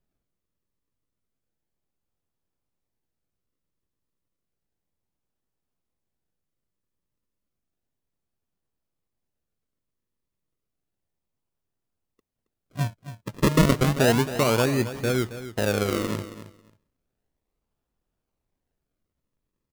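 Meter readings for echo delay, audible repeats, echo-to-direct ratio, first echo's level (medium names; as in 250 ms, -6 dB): 272 ms, 2, -13.0 dB, -13.0 dB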